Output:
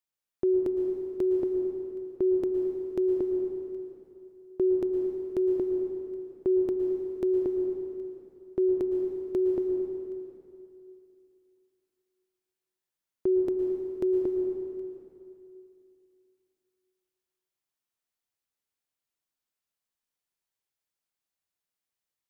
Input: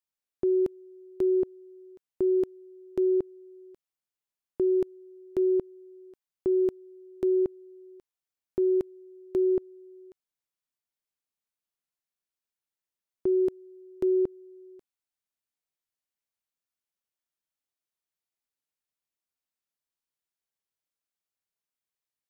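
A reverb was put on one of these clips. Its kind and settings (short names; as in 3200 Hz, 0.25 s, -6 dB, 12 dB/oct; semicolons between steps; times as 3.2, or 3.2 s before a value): plate-style reverb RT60 2.7 s, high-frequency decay 0.8×, pre-delay 0.1 s, DRR 2.5 dB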